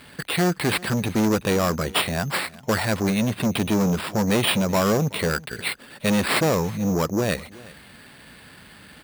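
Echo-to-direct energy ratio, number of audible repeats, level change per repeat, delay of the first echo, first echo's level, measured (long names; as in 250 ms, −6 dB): −21.5 dB, 1, repeats not evenly spaced, 375 ms, −21.5 dB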